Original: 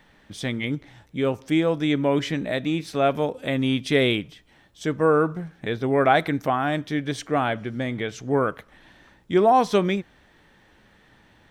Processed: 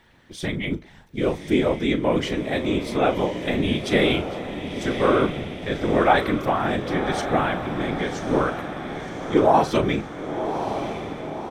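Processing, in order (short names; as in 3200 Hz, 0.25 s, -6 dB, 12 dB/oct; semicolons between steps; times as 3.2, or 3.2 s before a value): whisperiser; doubler 38 ms -12.5 dB; diffused feedback echo 1.086 s, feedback 58%, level -8 dB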